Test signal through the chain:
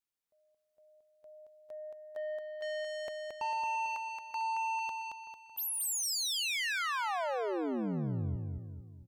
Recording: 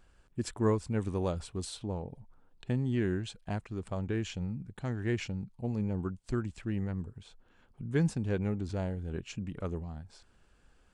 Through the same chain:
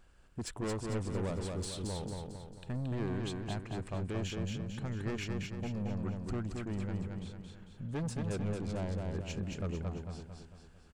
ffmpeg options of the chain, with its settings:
ffmpeg -i in.wav -filter_complex "[0:a]asoftclip=type=tanh:threshold=-33dB,asplit=2[link_01][link_02];[link_02]aecho=0:1:224|448|672|896|1120|1344:0.668|0.321|0.154|0.0739|0.0355|0.017[link_03];[link_01][link_03]amix=inputs=2:normalize=0" out.wav

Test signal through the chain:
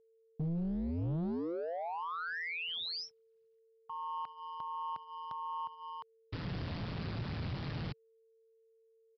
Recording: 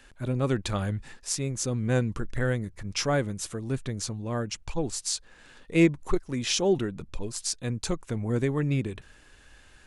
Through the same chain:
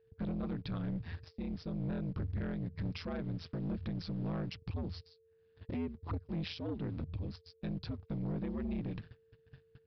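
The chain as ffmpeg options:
ffmpeg -i in.wav -filter_complex "[0:a]asplit=2[link_01][link_02];[link_02]acrusher=bits=6:mix=0:aa=0.000001,volume=-10dB[link_03];[link_01][link_03]amix=inputs=2:normalize=0,acompressor=threshold=-33dB:ratio=6,alimiter=level_in=2dB:limit=-24dB:level=0:latency=1:release=307,volume=-2dB,aeval=exprs='val(0)*sin(2*PI*84*n/s)':channel_layout=same,equalizer=frequency=140:width_type=o:width=1.8:gain=12.5,aresample=11025,asoftclip=type=tanh:threshold=-30.5dB,aresample=44100,agate=range=-28dB:threshold=-45dB:ratio=16:detection=peak,aeval=exprs='val(0)+0.000562*sin(2*PI*450*n/s)':channel_layout=same,volume=-1dB" out.wav

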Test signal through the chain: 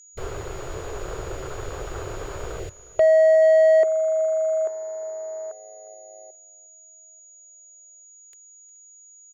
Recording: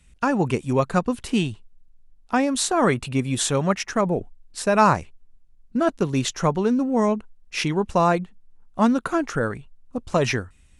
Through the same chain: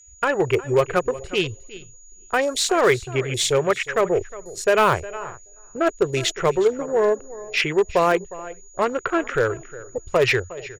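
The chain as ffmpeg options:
ffmpeg -i in.wav -filter_complex "[0:a]aeval=exprs='val(0)+0.0251*sin(2*PI*6800*n/s)':channel_layout=same,asplit=2[link_01][link_02];[link_02]aecho=0:1:427|854:0.0708|0.0241[link_03];[link_01][link_03]amix=inputs=2:normalize=0,afwtdn=0.0224,firequalizer=gain_entry='entry(110,0);entry(230,-19);entry(380,7);entry(830,-3);entry(1300,2);entry(2000,7);entry(11000,-7)':delay=0.05:min_phase=1,asplit=2[link_04][link_05];[link_05]aecho=0:1:359:0.119[link_06];[link_04][link_06]amix=inputs=2:normalize=0,aeval=exprs='0.335*(cos(1*acos(clip(val(0)/0.335,-1,1)))-cos(1*PI/2))+0.0266*(cos(5*acos(clip(val(0)/0.335,-1,1)))-cos(5*PI/2))+0.00944*(cos(7*acos(clip(val(0)/0.335,-1,1)))-cos(7*PI/2))':channel_layout=same" out.wav

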